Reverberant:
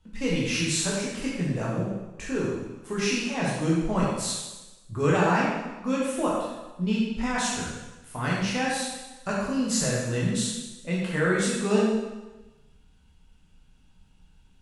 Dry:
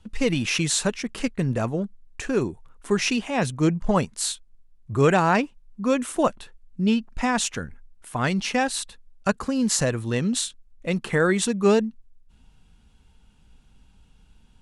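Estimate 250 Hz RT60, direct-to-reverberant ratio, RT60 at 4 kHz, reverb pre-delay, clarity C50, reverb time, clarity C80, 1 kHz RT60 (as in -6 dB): 1.1 s, -6.0 dB, 1.0 s, 11 ms, -0.5 dB, 1.1 s, 2.0 dB, 1.2 s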